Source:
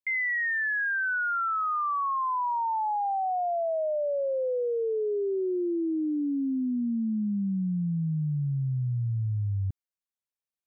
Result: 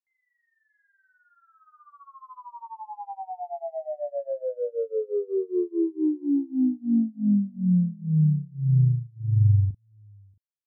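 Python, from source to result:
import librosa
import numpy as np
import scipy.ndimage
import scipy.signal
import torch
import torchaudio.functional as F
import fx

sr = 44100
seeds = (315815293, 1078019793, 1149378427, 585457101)

y = scipy.signal.sosfilt(scipy.signal.butter(4, 1100.0, 'lowpass', fs=sr, output='sos'), x)
y = fx.tilt_shelf(y, sr, db=6.0, hz=820.0)
y = fx.doubler(y, sr, ms=39.0, db=-3)
y = y + 10.0 ** (-12.5 / 20.0) * np.pad(y, (int(632 * sr / 1000.0), 0))[:len(y)]
y = fx.upward_expand(y, sr, threshold_db=-34.0, expansion=2.5)
y = F.gain(torch.from_numpy(y), 1.5).numpy()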